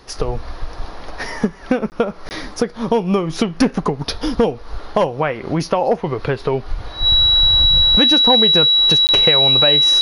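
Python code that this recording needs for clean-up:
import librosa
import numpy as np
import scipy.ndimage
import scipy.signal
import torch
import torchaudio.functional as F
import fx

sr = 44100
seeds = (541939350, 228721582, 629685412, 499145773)

y = fx.notch(x, sr, hz=3900.0, q=30.0)
y = fx.fix_interpolate(y, sr, at_s=(1.9, 2.29, 9.07), length_ms=19.0)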